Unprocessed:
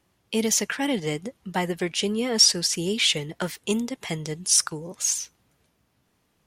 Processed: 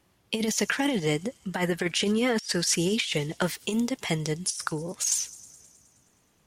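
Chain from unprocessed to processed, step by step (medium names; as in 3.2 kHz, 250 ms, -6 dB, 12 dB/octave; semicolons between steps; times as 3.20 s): 1.51–2.92 s: peaking EQ 1.6 kHz +6.5 dB 0.74 oct; compressor with a negative ratio -25 dBFS, ratio -0.5; feedback echo behind a high-pass 105 ms, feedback 70%, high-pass 5.2 kHz, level -17.5 dB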